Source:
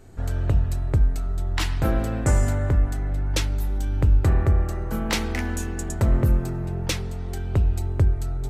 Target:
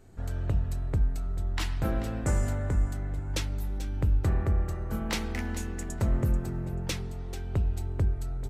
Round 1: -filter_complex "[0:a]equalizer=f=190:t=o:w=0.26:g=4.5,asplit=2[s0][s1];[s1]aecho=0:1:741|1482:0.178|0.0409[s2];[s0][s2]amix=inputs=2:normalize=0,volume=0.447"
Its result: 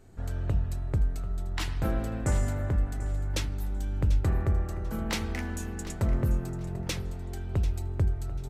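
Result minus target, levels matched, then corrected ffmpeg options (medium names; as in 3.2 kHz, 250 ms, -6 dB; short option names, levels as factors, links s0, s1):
echo 304 ms late
-filter_complex "[0:a]equalizer=f=190:t=o:w=0.26:g=4.5,asplit=2[s0][s1];[s1]aecho=0:1:437|874:0.178|0.0409[s2];[s0][s2]amix=inputs=2:normalize=0,volume=0.447"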